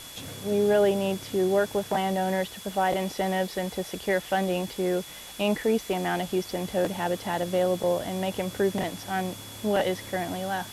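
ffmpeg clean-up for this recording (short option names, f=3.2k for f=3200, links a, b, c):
-af "adeclick=t=4,bandreject=f=3.4k:w=30,afwtdn=0.0071"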